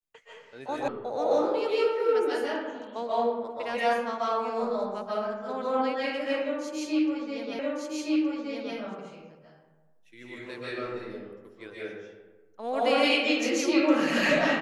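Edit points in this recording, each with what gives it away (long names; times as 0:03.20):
0:00.88: cut off before it has died away
0:07.59: the same again, the last 1.17 s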